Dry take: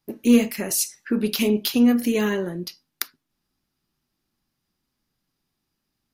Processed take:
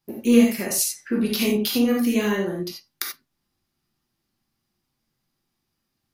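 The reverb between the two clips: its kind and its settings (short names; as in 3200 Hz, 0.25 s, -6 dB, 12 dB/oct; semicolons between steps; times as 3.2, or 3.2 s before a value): non-linear reverb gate 0.11 s flat, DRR -1 dB; gain -2.5 dB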